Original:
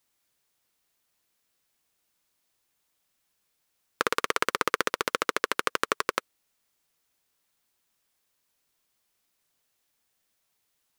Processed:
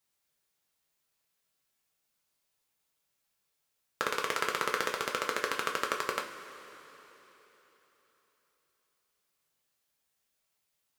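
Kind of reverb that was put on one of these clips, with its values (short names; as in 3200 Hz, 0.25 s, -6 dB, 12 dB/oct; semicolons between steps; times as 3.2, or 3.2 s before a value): two-slope reverb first 0.29 s, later 3.9 s, from -18 dB, DRR 0.5 dB; gain -7 dB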